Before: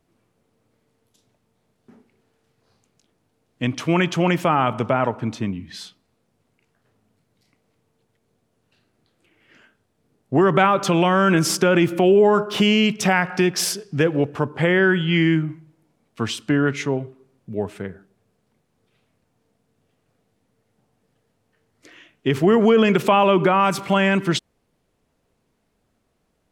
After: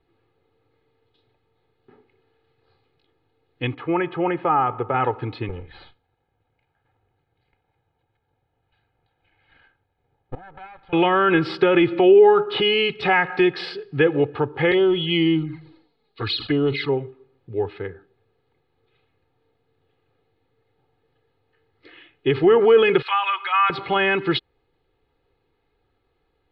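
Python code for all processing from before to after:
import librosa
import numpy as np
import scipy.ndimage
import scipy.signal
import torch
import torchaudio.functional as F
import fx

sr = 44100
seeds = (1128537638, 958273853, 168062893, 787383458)

y = fx.chain(x, sr, fx.lowpass(hz=1400.0, slope=12),
    fx.low_shelf(hz=330.0, db=-5.5), at=(3.74, 4.94))
y = fx.chain(y, sr, fx.lower_of_two(delay_ms=1.3),
    fx.gate_flip(shuts_db=-17.0, range_db=-24),
    fx.air_absorb(metres=250.0), at=(5.49, 10.93))
y = fx.chain(y, sr, fx.peak_eq(hz=4300.0, db=13.5, octaves=0.63),
    fx.env_flanger(rest_ms=5.1, full_db=-16.0),
    fx.sustainer(db_per_s=95.0), at=(14.71, 16.89))
y = fx.chain(y, sr, fx.highpass(hz=1200.0, slope=24),
    fx.comb(ms=5.2, depth=0.64), at=(23.02, 23.7))
y = scipy.signal.sosfilt(scipy.signal.ellip(4, 1.0, 40, 4200.0, 'lowpass', fs=sr, output='sos'), y)
y = y + 0.8 * np.pad(y, (int(2.4 * sr / 1000.0), 0))[:len(y)]
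y = F.gain(torch.from_numpy(y), -1.0).numpy()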